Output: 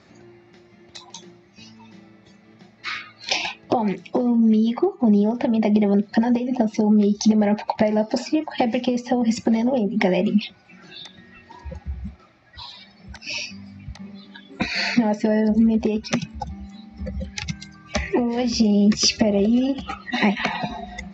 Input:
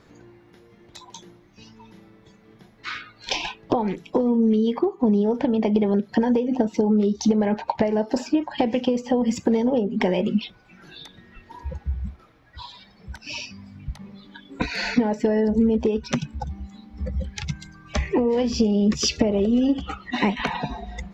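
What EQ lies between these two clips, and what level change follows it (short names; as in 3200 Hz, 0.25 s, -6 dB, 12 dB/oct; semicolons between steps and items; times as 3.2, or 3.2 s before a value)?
speaker cabinet 120–6300 Hz, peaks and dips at 140 Hz -9 dB, 280 Hz -9 dB, 460 Hz -9 dB, 990 Hz -9 dB, 1500 Hz -7 dB, 3200 Hz -6 dB; notch 460 Hz, Q 12; +6.5 dB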